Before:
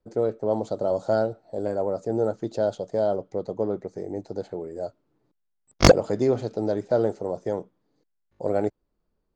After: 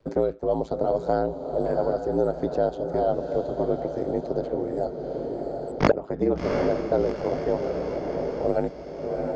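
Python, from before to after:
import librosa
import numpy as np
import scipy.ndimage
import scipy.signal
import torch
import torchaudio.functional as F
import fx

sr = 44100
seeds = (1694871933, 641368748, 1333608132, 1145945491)

y = fx.high_shelf(x, sr, hz=6500.0, db=-12.0)
y = y * np.sin(2.0 * np.pi * 55.0 * np.arange(len(y)) / sr)
y = fx.air_absorb(y, sr, metres=58.0)
y = fx.echo_diffused(y, sr, ms=717, feedback_pct=45, wet_db=-9)
y = fx.band_squash(y, sr, depth_pct=70)
y = y * librosa.db_to_amplitude(3.0)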